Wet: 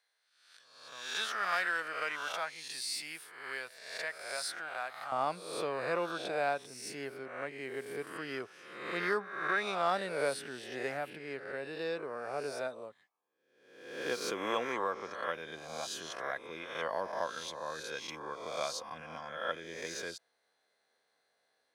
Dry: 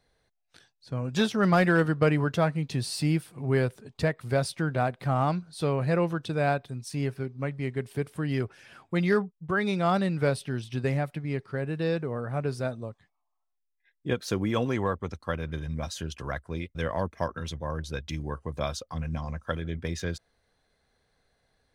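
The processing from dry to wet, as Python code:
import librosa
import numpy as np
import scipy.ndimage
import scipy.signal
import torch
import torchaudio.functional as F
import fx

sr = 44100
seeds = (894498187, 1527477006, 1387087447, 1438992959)

y = fx.spec_swells(x, sr, rise_s=0.87)
y = fx.highpass(y, sr, hz=fx.steps((0.0, 1200.0), (5.12, 450.0)), slope=12)
y = y * 10.0 ** (-5.5 / 20.0)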